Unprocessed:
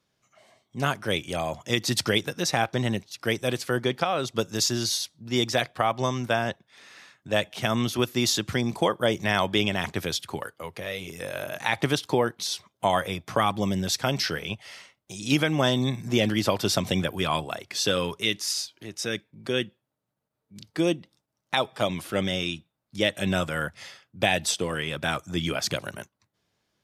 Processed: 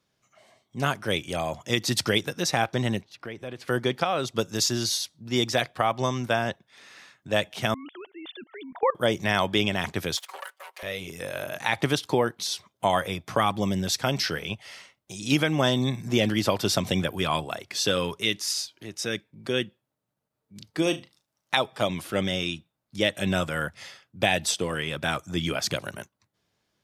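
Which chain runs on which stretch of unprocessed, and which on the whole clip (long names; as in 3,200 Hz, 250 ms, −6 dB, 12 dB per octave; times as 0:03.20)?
0:03.01–0:03.68: bass and treble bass −1 dB, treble −15 dB + downward compressor 3 to 1, threshold −35 dBFS + notch filter 1,300 Hz, Q 27
0:07.74–0:08.95: three sine waves on the formant tracks + output level in coarse steps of 20 dB
0:10.17–0:10.83: lower of the sound and its delayed copy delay 5.3 ms + high-pass filter 640 Hz 24 dB per octave
0:20.82–0:21.57: tilt shelving filter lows −3.5 dB, about 680 Hz + flutter between parallel walls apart 6.3 metres, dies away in 0.22 s
whole clip: no processing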